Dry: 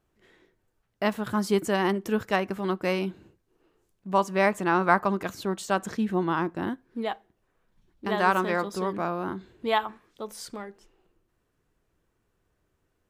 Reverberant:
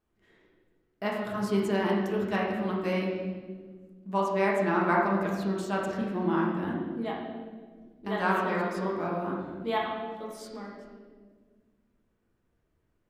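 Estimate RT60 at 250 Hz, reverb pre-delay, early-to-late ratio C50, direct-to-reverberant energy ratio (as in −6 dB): 2.5 s, 5 ms, 1.0 dB, −4.0 dB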